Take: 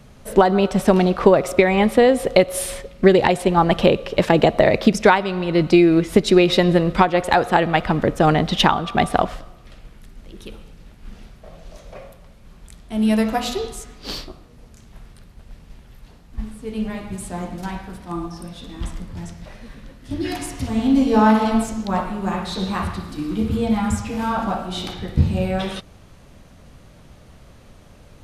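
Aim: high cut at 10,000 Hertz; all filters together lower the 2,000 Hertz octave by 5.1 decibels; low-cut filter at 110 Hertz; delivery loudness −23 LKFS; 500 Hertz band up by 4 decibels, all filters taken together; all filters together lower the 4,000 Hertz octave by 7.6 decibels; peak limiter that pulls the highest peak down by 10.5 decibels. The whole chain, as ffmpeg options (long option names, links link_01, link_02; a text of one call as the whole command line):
ffmpeg -i in.wav -af "highpass=110,lowpass=10000,equalizer=frequency=500:width_type=o:gain=5.5,equalizer=frequency=2000:width_type=o:gain=-5,equalizer=frequency=4000:width_type=o:gain=-8,volume=-3dB,alimiter=limit=-10.5dB:level=0:latency=1" out.wav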